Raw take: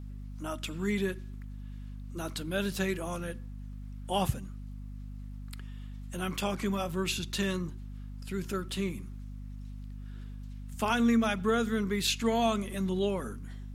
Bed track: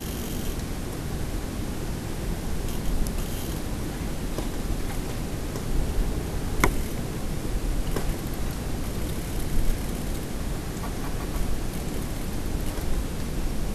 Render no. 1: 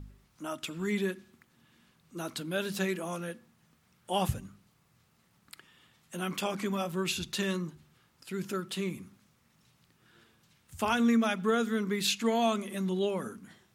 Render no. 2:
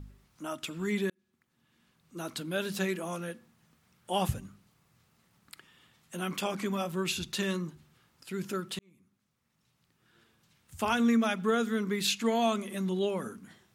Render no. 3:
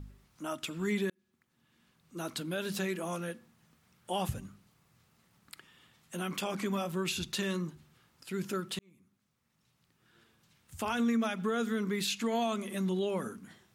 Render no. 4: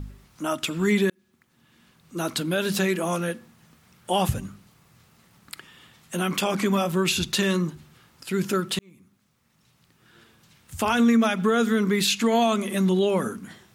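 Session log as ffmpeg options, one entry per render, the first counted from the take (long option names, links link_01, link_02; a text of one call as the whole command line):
ffmpeg -i in.wav -af "bandreject=frequency=50:width_type=h:width=4,bandreject=frequency=100:width_type=h:width=4,bandreject=frequency=150:width_type=h:width=4,bandreject=frequency=200:width_type=h:width=4,bandreject=frequency=250:width_type=h:width=4" out.wav
ffmpeg -i in.wav -filter_complex "[0:a]asplit=3[link_01][link_02][link_03];[link_01]atrim=end=1.1,asetpts=PTS-STARTPTS,afade=type=out:start_time=1.096:duration=0.004:curve=hsin[link_04];[link_02]atrim=start=1.1:end=8.79,asetpts=PTS-STARTPTS,afade=type=in:duration=1.24,afade=type=out:start_time=7.686:duration=0.004:curve=hsin[link_05];[link_03]atrim=start=8.79,asetpts=PTS-STARTPTS,afade=type=in:duration=2.12[link_06];[link_04][link_05][link_06]concat=n=3:v=0:a=1" out.wav
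ffmpeg -i in.wav -af "alimiter=limit=-23dB:level=0:latency=1:release=92" out.wav
ffmpeg -i in.wav -af "volume=10.5dB" out.wav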